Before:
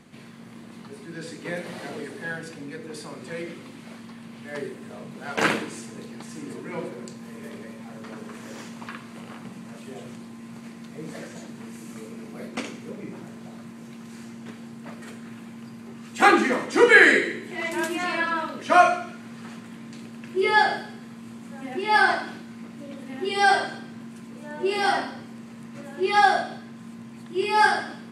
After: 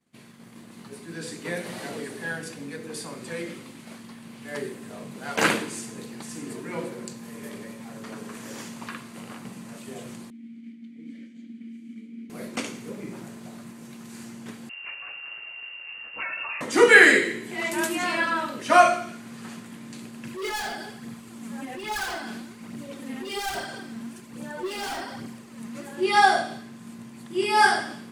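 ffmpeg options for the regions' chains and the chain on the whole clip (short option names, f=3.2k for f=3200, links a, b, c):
-filter_complex "[0:a]asettb=1/sr,asplit=3[a][b][c];[a]atrim=end=10.304[d];[b]atrim=start=10.3:end=12.3,asetpts=PTS-STARTPTS,afade=t=in:d=0.004:c=qsin,afade=t=out:st=1.996:d=0.004:c=qsin,asplit=3[e][f][g];[e]bandpass=f=270:t=q:w=8,volume=0dB[h];[f]bandpass=f=2.29k:t=q:w=8,volume=-6dB[i];[g]bandpass=f=3.01k:t=q:w=8,volume=-9dB[j];[h][i][j]amix=inputs=3:normalize=0,equalizer=f=220:w=5:g=12[k];[c]atrim=start=12.296[l];[d][k]acrossfade=d=0.004:c1=hsin:c2=qsin[m];[m][l]acrossfade=d=0.004:c1=qsin:c2=hsin,asettb=1/sr,asplit=3[n][o][p];[n]atrim=end=14.694[q];[o]atrim=start=14.69:end=16.61,asetpts=PTS-STARTPTS,afade=t=in:d=0.004:c=qsin,afade=t=out:st=1.916:d=0.004:c=qsin,acompressor=threshold=-29dB:ratio=16:attack=3.2:release=140:knee=1:detection=peak,lowpass=f=2.6k:t=q:w=0.5098,lowpass=f=2.6k:t=q:w=0.6013,lowpass=f=2.6k:t=q:w=0.9,lowpass=f=2.6k:t=q:w=2.563,afreqshift=-3000[r];[p]atrim=start=16.606[s];[q][r]acrossfade=d=0.004:c1=hsin:c2=qsin[t];[t][s]acrossfade=d=0.004:c1=qsin:c2=hsin,asettb=1/sr,asplit=3[u][v][w];[u]atrim=end=20.254[x];[v]atrim=start=20.25:end=25.93,asetpts=PTS-STARTPTS,afade=t=in:d=0.004:c=qsin,afade=t=out:st=5.676:d=0.004:c=qsin,volume=25dB,asoftclip=hard,volume=-25dB,acompressor=threshold=-32dB:ratio=5:attack=3.2:release=140:knee=1:detection=peak,aphaser=in_gain=1:out_gain=1:delay=4.9:decay=0.45:speed=1.2:type=triangular[y];[w]atrim=start=25.926[z];[x][y]acrossfade=d=0.004:c1=hsin:c2=qsin[aa];[aa][z]acrossfade=d=0.004:c1=qsin:c2=hsin,highshelf=f=6.7k:g=10,agate=range=-33dB:threshold=-39dB:ratio=3:detection=peak"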